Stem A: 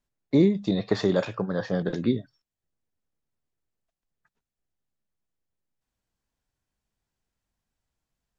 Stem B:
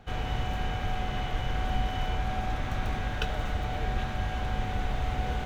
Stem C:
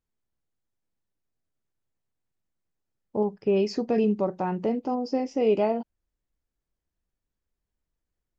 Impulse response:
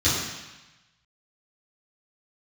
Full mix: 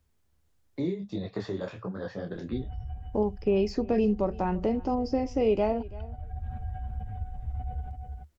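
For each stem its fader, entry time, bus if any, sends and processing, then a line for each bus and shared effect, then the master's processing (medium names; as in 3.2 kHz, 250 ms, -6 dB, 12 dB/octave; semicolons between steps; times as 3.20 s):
-9.0 dB, 0.45 s, no send, no echo send, detune thickener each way 45 cents
-11.0 dB, 2.45 s, no send, echo send -8 dB, spectral contrast enhancement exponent 2.2; auto duck -9 dB, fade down 0.35 s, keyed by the third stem
-1.0 dB, 0.00 s, no send, echo send -23 dB, de-esser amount 80%; vibrato 0.99 Hz 5.2 cents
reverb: none
echo: delay 334 ms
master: peaking EQ 75 Hz +13.5 dB 0.63 oct; three bands compressed up and down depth 40%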